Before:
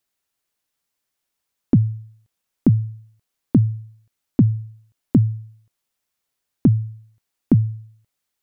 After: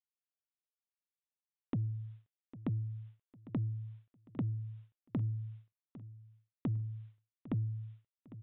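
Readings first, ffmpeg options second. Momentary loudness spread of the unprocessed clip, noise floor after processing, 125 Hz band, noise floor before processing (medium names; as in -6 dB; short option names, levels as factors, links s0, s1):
15 LU, under -85 dBFS, -16.5 dB, -80 dBFS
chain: -af "agate=range=0.0224:threshold=0.00631:ratio=3:detection=peak,lowshelf=f=170:g=-10,bandreject=f=760:w=12,alimiter=limit=0.1:level=0:latency=1,acompressor=threshold=0.0141:ratio=16,asoftclip=type=tanh:threshold=0.0211,aecho=1:1:803|1606|2409:0.15|0.0539|0.0194,aresample=8000,aresample=44100,volume=2.24"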